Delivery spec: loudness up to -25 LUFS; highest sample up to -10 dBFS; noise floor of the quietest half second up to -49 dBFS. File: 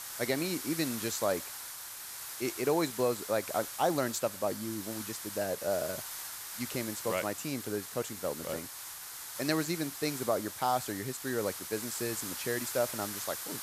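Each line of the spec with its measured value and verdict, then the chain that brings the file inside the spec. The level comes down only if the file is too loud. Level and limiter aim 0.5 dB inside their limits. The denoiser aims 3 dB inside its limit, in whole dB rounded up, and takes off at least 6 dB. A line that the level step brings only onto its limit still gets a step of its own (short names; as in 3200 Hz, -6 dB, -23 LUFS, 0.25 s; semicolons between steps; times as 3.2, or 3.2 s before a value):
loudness -34.0 LUFS: OK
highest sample -15.0 dBFS: OK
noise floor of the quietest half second -44 dBFS: fail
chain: denoiser 8 dB, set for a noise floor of -44 dBFS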